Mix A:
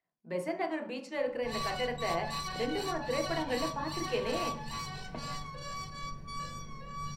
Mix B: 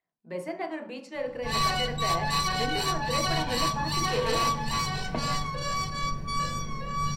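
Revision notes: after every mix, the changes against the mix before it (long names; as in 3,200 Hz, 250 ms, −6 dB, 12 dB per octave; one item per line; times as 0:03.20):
background +10.5 dB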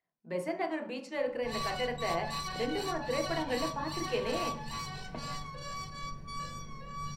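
background −10.5 dB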